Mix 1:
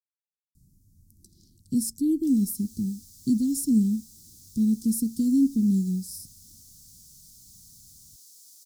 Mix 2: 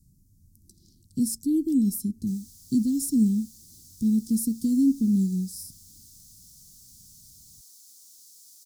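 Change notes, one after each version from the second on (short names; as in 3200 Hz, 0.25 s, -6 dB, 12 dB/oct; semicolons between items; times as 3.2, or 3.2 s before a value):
speech: entry -0.55 s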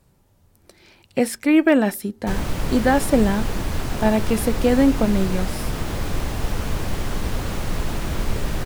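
background: remove ladder high-pass 910 Hz, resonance 50%; master: remove inverse Chebyshev band-stop 560–2600 Hz, stop band 50 dB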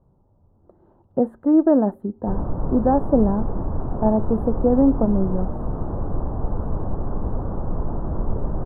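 master: add inverse Chebyshev low-pass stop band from 2100 Hz, stop band 40 dB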